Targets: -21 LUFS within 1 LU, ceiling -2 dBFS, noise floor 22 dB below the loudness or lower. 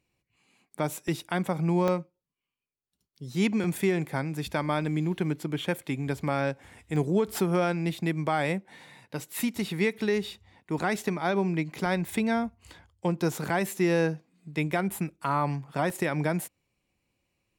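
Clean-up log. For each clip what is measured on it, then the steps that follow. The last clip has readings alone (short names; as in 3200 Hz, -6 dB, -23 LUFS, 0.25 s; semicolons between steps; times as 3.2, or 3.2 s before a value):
dropouts 6; longest dropout 2.1 ms; loudness -29.0 LUFS; peak -14.0 dBFS; loudness target -21.0 LUFS
-> interpolate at 1.08/1.88/5.59/6.96/11.86/15.9, 2.1 ms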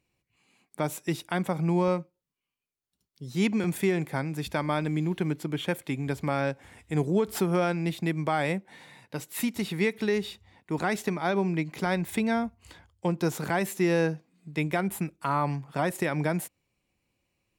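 dropouts 0; loudness -29.0 LUFS; peak -14.0 dBFS; loudness target -21.0 LUFS
-> gain +8 dB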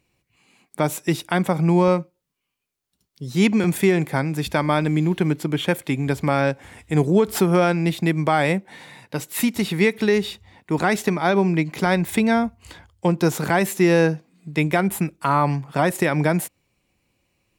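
loudness -21.0 LUFS; peak -6.0 dBFS; noise floor -78 dBFS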